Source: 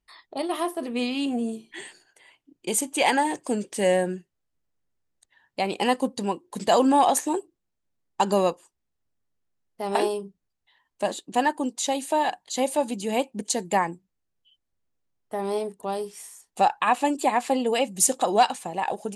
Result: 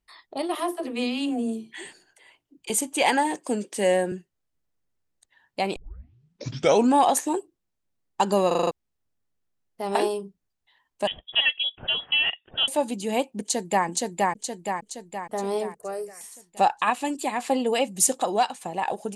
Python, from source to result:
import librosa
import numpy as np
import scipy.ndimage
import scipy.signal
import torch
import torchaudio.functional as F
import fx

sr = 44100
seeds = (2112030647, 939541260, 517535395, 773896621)

y = fx.dispersion(x, sr, late='lows', ms=69.0, hz=320.0, at=(0.55, 2.7))
y = fx.highpass(y, sr, hz=180.0, slope=24, at=(3.35, 4.12))
y = fx.freq_invert(y, sr, carrier_hz=3600, at=(11.07, 12.68))
y = fx.echo_throw(y, sr, start_s=13.41, length_s=0.45, ms=470, feedback_pct=55, wet_db=-1.0)
y = fx.fixed_phaser(y, sr, hz=920.0, stages=6, at=(15.76, 16.21))
y = fx.peak_eq(y, sr, hz=680.0, db=-6.5, octaves=2.4, at=(16.9, 17.39))
y = fx.edit(y, sr, fx.tape_start(start_s=5.76, length_s=1.18),
    fx.stutter_over(start_s=8.47, slice_s=0.04, count=6),
    fx.fade_out_to(start_s=18.04, length_s=0.57, floor_db=-6.5), tone=tone)